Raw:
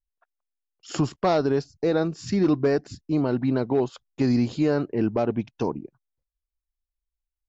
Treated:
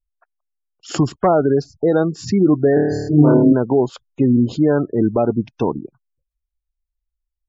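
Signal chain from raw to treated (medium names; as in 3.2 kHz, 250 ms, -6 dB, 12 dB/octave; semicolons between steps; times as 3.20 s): 2.74–3.53 s: flutter echo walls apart 4.6 m, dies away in 1.2 s; spectral gate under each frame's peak -25 dB strong; trim +7 dB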